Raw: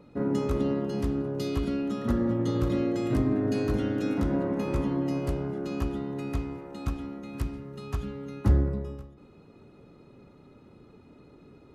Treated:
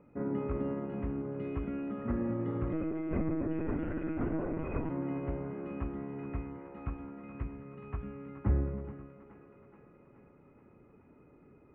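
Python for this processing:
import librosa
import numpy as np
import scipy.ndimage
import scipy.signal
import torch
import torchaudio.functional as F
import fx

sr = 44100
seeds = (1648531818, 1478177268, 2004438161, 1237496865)

y = scipy.signal.sosfilt(scipy.signal.ellip(4, 1.0, 60, 2400.0, 'lowpass', fs=sr, output='sos'), x)
y = fx.echo_thinned(y, sr, ms=425, feedback_pct=69, hz=340.0, wet_db=-11.0)
y = fx.lpc_monotone(y, sr, seeds[0], pitch_hz=160.0, order=16, at=(2.73, 4.9))
y = F.gain(torch.from_numpy(y), -6.0).numpy()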